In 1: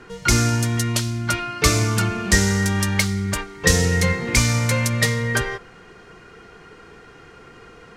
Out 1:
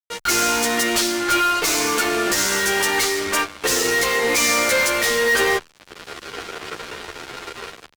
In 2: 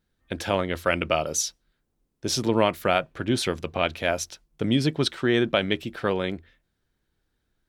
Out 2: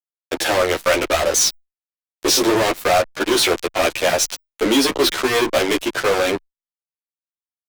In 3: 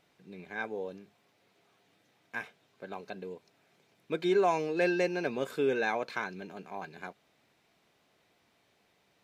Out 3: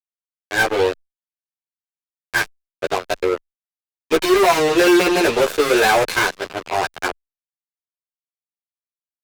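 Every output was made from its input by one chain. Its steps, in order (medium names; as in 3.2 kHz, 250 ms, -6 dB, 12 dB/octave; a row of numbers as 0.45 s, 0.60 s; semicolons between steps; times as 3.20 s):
in parallel at -3 dB: hard clipper -16.5 dBFS; on the sum: steep high-pass 300 Hz 36 dB/octave; level rider gain up to 7.5 dB; fuzz box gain 28 dB, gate -31 dBFS; endless flanger 11.5 ms -0.84 Hz; normalise loudness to -18 LUFS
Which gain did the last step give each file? -0.5 dB, +2.5 dB, +4.5 dB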